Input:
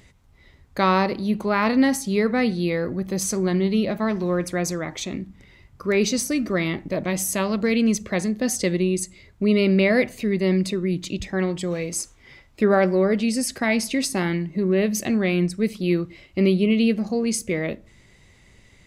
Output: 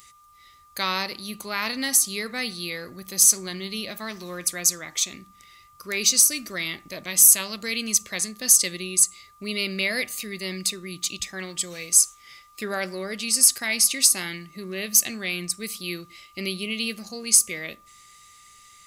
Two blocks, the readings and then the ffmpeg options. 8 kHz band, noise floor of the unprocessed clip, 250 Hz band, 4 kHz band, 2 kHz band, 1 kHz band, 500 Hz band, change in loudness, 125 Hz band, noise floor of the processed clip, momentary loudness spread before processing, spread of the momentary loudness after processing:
+12.0 dB, -54 dBFS, -14.5 dB, +6.0 dB, -1.5 dB, -8.5 dB, -13.0 dB, +1.0 dB, -14.5 dB, -54 dBFS, 9 LU, 17 LU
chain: -af "aeval=exprs='val(0)+0.00562*sin(2*PI*1200*n/s)':c=same,tiltshelf=f=1.5k:g=-5,crystalizer=i=6.5:c=0,volume=-10dB"

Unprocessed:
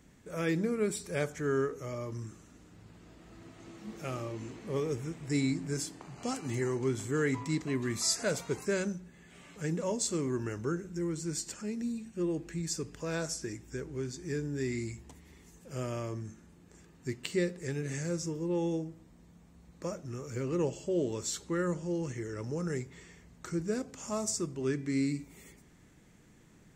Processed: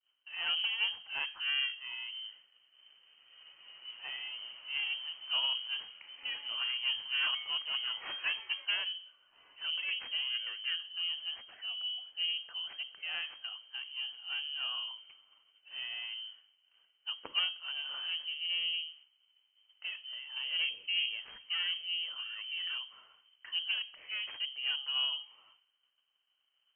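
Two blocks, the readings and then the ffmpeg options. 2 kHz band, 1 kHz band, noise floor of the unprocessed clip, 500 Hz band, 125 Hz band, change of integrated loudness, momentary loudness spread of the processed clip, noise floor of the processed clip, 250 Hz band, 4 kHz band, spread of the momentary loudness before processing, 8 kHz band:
+5.5 dB, -6.0 dB, -59 dBFS, -29.0 dB, under -40 dB, 0.0 dB, 11 LU, -76 dBFS, under -35 dB, +14.5 dB, 11 LU, under -40 dB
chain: -af "agate=range=-33dB:threshold=-49dB:ratio=3:detection=peak,aeval=exprs='0.178*(cos(1*acos(clip(val(0)/0.178,-1,1)))-cos(1*PI/2))+0.0178*(cos(3*acos(clip(val(0)/0.178,-1,1)))-cos(3*PI/2))+0.0282*(cos(4*acos(clip(val(0)/0.178,-1,1)))-cos(4*PI/2))+0.00141*(cos(7*acos(clip(val(0)/0.178,-1,1)))-cos(7*PI/2))':c=same,lowpass=f=2.7k:t=q:w=0.5098,lowpass=f=2.7k:t=q:w=0.6013,lowpass=f=2.7k:t=q:w=0.9,lowpass=f=2.7k:t=q:w=2.563,afreqshift=-3200"

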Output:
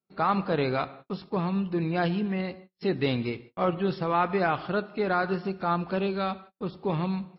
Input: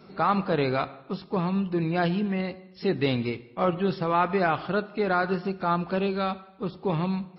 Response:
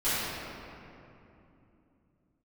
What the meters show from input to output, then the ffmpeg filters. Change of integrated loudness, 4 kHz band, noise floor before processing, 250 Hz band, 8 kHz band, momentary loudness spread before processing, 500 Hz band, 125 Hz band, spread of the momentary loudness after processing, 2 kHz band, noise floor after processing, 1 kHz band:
-1.5 dB, -1.5 dB, -52 dBFS, -1.5 dB, n/a, 7 LU, -1.5 dB, -1.5 dB, 7 LU, -1.5 dB, -74 dBFS, -1.5 dB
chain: -af "agate=range=-39dB:threshold=-44dB:ratio=16:detection=peak,volume=-1.5dB"

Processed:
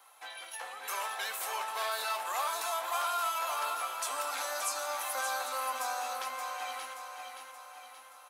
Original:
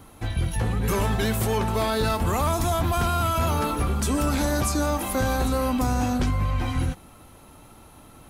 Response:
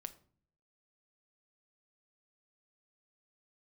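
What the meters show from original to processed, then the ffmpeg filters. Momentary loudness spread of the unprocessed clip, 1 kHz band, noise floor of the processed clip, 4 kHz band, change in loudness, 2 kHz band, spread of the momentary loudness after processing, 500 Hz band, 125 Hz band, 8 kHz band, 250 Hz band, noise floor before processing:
3 LU, -5.5 dB, -53 dBFS, -5.0 dB, -10.0 dB, -4.5 dB, 13 LU, -14.0 dB, under -40 dB, -4.5 dB, under -35 dB, -49 dBFS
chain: -filter_complex "[0:a]highpass=f=720:w=0.5412,highpass=f=720:w=1.3066,aecho=1:1:576|1152|1728|2304|2880|3456:0.473|0.241|0.123|0.0628|0.032|0.0163[a];[1:a]atrim=start_sample=2205,asetrate=70560,aresample=44100[b];[a][b]afir=irnorm=-1:irlink=0,volume=2.5dB"

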